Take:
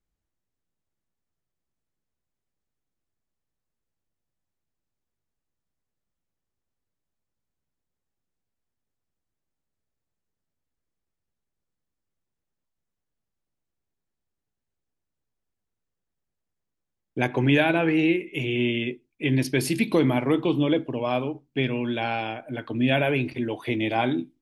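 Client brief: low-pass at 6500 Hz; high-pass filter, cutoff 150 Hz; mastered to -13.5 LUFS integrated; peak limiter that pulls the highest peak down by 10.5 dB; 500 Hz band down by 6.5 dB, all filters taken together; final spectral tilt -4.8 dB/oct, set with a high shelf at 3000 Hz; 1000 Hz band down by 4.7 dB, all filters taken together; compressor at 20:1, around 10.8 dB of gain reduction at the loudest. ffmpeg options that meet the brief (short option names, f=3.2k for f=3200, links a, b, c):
-af "highpass=150,lowpass=6.5k,equalizer=f=500:t=o:g=-8.5,equalizer=f=1k:t=o:g=-3.5,highshelf=f=3k:g=8.5,acompressor=threshold=-28dB:ratio=20,volume=23dB,alimiter=limit=-3.5dB:level=0:latency=1"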